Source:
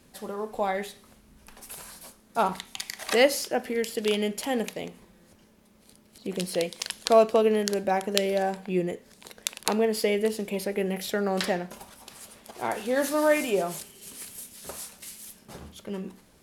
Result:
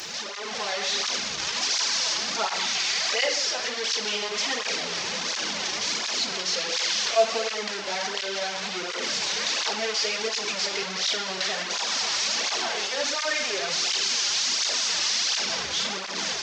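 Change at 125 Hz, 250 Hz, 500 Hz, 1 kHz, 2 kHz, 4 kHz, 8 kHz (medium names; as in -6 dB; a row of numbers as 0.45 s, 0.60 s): -9.5 dB, -10.5 dB, -6.0 dB, -0.5 dB, +6.5 dB, +13.0 dB, +10.5 dB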